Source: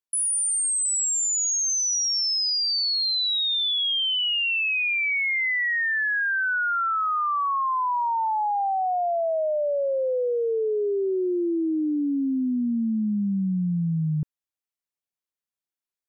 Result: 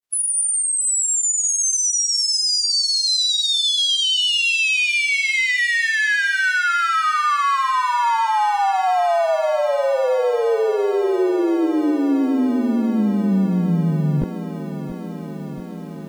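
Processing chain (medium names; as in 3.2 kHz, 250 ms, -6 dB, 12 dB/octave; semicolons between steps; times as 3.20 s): spectral peaks clipped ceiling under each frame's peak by 25 dB; vibrato 8.3 Hz 20 cents; granulator 100 ms, grains 20 per s, spray 16 ms, pitch spread up and down by 0 st; on a send: feedback echo behind a high-pass 1098 ms, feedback 64%, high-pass 4.4 kHz, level -18 dB; on the sum: bit-crushed delay 681 ms, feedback 80%, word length 9-bit, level -13 dB; trim +8.5 dB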